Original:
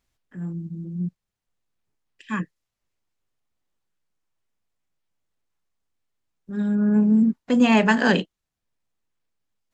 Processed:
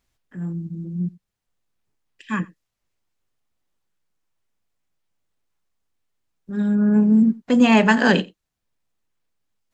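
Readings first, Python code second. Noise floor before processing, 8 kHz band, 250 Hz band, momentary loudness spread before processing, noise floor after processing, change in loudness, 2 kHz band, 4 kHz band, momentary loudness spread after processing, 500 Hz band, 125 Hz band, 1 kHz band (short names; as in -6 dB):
-85 dBFS, n/a, +2.5 dB, 16 LU, -82 dBFS, +2.5 dB, +2.5 dB, +2.5 dB, 16 LU, +2.5 dB, +2.5 dB, +2.5 dB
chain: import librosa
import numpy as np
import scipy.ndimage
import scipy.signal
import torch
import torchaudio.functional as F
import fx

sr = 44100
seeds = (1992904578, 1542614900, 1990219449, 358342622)

y = x + 10.0 ** (-23.0 / 20.0) * np.pad(x, (int(88 * sr / 1000.0), 0))[:len(x)]
y = y * 10.0 ** (2.5 / 20.0)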